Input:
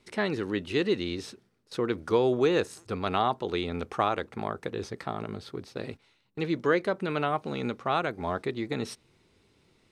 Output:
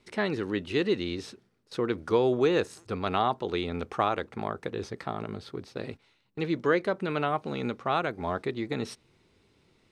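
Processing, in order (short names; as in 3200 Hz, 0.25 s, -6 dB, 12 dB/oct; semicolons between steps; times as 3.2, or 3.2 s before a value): high shelf 8700 Hz -6 dB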